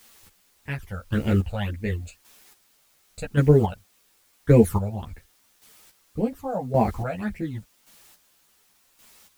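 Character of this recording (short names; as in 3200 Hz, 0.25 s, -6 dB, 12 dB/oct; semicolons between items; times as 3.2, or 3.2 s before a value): phasing stages 12, 1.8 Hz, lowest notch 320–1200 Hz; a quantiser's noise floor 10-bit, dither triangular; chopped level 0.89 Hz, depth 65%, duty 25%; a shimmering, thickened sound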